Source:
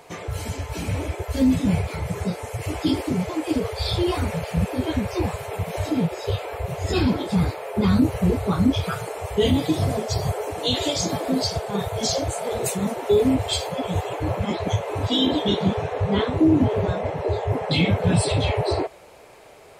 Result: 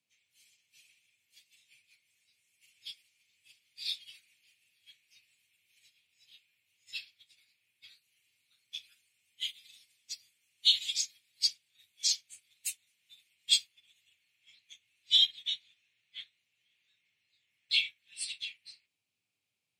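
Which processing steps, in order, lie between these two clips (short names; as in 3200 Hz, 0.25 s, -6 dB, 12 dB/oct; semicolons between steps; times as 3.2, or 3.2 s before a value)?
steep high-pass 2300 Hz 36 dB/oct; high shelf 4600 Hz -5 dB; added noise pink -67 dBFS; frequency shift +87 Hz; upward expander 2.5:1, over -46 dBFS; gain +5 dB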